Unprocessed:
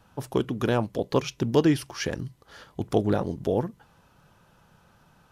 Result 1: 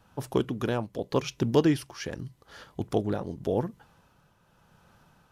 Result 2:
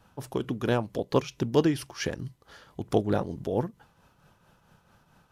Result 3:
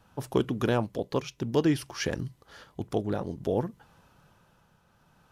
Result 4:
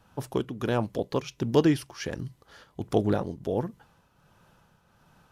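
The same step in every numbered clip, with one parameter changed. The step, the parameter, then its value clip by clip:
tremolo, rate: 0.86 Hz, 4.5 Hz, 0.57 Hz, 1.4 Hz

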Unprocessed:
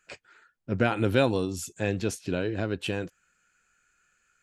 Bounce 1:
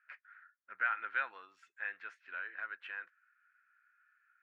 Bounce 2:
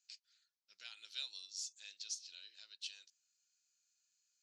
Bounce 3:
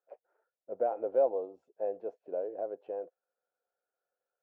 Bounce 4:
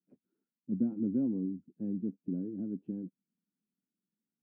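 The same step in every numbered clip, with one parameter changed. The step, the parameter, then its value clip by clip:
Butterworth band-pass, frequency: 1.6 kHz, 5 kHz, 600 Hz, 230 Hz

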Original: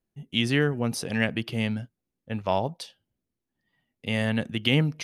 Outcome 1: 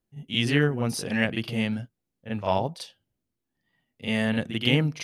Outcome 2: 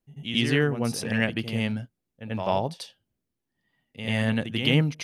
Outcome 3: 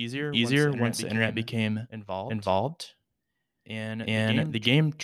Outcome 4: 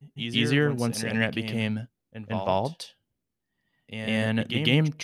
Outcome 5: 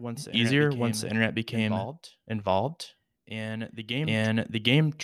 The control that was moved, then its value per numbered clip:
reverse echo, time: 41 ms, 90 ms, 376 ms, 151 ms, 764 ms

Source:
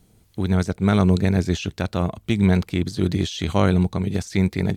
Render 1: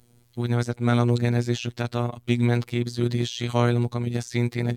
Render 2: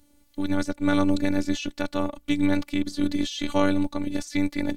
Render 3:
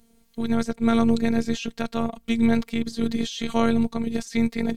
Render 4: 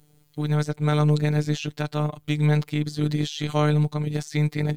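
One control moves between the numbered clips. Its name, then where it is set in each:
robot voice, frequency: 120 Hz, 290 Hz, 230 Hz, 150 Hz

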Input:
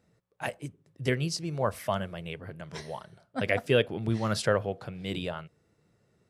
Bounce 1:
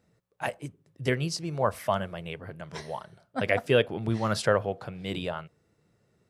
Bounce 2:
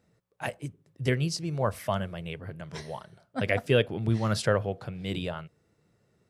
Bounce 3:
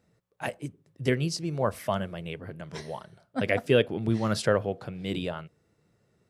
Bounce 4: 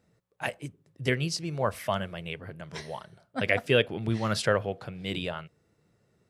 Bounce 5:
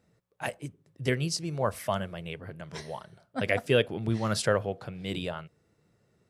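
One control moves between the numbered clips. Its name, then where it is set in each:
dynamic bell, frequency: 920 Hz, 100 Hz, 280 Hz, 2.5 kHz, 8.9 kHz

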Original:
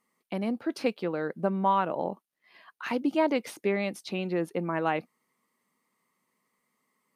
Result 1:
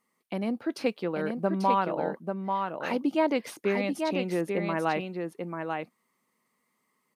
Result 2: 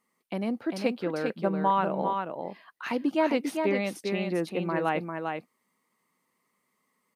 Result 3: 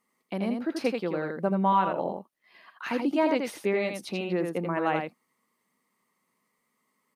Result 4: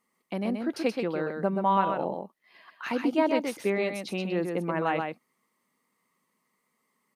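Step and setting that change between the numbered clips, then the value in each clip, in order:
delay, time: 840 ms, 398 ms, 83 ms, 128 ms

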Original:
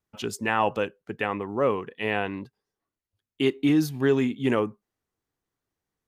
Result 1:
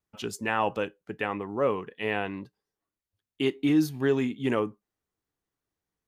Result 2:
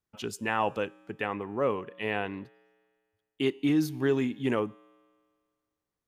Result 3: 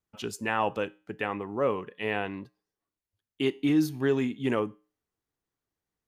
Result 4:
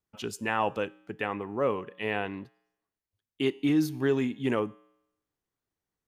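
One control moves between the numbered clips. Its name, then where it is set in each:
feedback comb, decay: 0.15 s, 1.8 s, 0.38 s, 0.83 s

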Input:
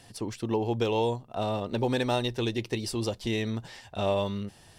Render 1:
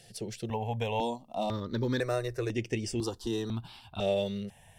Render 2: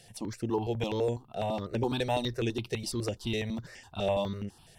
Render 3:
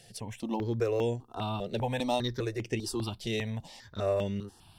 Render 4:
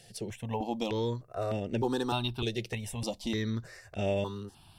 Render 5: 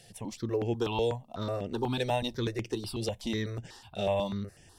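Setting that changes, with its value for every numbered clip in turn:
stepped phaser, rate: 2 Hz, 12 Hz, 5 Hz, 3.3 Hz, 8.1 Hz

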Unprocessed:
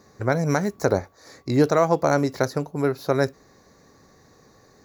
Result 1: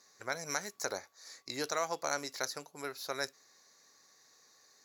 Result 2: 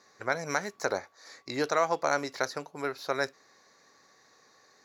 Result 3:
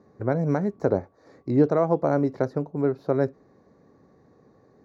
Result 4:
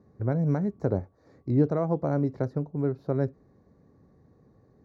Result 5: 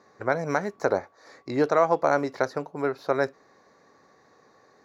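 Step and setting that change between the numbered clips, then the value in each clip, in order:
band-pass filter, frequency: 7.4 kHz, 2.9 kHz, 270 Hz, 110 Hz, 1.1 kHz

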